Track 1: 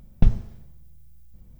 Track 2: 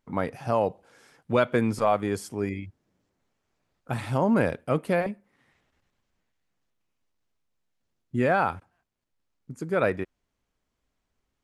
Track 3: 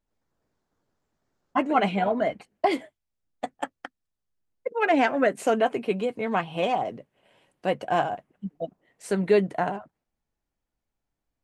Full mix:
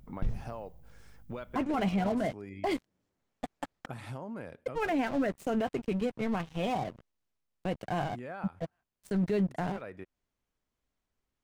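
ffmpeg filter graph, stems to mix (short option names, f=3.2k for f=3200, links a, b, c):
-filter_complex "[0:a]aeval=exprs='val(0)+0.00251*(sin(2*PI*50*n/s)+sin(2*PI*2*50*n/s)/2+sin(2*PI*3*50*n/s)/3+sin(2*PI*4*50*n/s)/4+sin(2*PI*5*50*n/s)/5)':c=same,volume=-8dB[a];[1:a]acompressor=threshold=-32dB:ratio=8,volume=-6dB[b];[2:a]aeval=exprs='sgn(val(0))*max(abs(val(0))-0.0133,0)':c=same,bass=f=250:g=13,treble=f=4k:g=2,volume=-5dB,asplit=2[c][d];[d]apad=whole_len=504487[e];[b][e]sidechaincompress=threshold=-33dB:ratio=8:attack=45:release=329[f];[a][f][c]amix=inputs=3:normalize=0,alimiter=limit=-22dB:level=0:latency=1:release=18"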